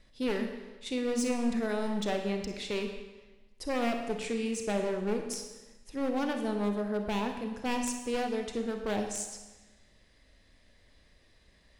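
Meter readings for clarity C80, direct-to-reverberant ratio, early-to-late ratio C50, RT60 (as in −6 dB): 8.0 dB, 4.5 dB, 6.5 dB, 1.2 s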